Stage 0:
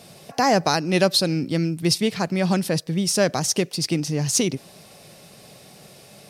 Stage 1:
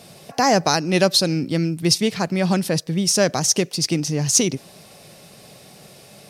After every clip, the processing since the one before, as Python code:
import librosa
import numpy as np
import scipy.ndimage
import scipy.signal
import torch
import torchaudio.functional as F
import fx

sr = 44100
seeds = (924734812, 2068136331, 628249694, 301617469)

y = fx.dynamic_eq(x, sr, hz=6200.0, q=2.7, threshold_db=-37.0, ratio=4.0, max_db=5)
y = y * librosa.db_to_amplitude(1.5)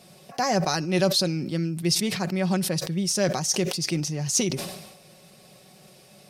y = x + 0.45 * np.pad(x, (int(5.4 * sr / 1000.0), 0))[:len(x)]
y = fx.sustainer(y, sr, db_per_s=55.0)
y = y * librosa.db_to_amplitude(-8.0)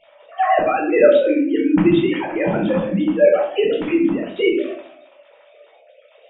y = fx.sine_speech(x, sr)
y = fx.room_shoebox(y, sr, seeds[0], volume_m3=590.0, walls='furnished', distance_m=4.4)
y = y * librosa.db_to_amplitude(1.0)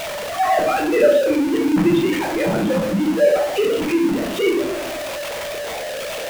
y = x + 0.5 * 10.0 ** (-18.0 / 20.0) * np.sign(x)
y = y * librosa.db_to_amplitude(-3.5)